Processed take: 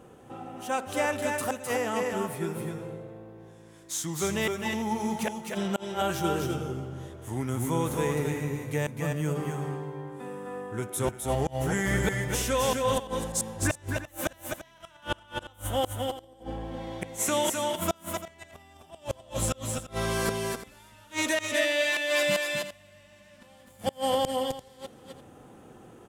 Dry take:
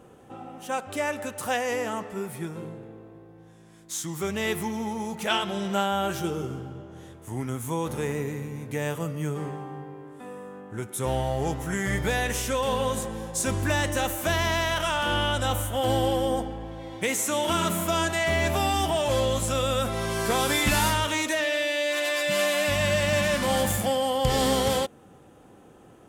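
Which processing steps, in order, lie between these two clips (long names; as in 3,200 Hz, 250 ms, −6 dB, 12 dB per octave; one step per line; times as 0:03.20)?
gate with flip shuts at −15 dBFS, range −32 dB
on a send: multi-tap delay 257/265/343 ms −5/−9.5/−14.5 dB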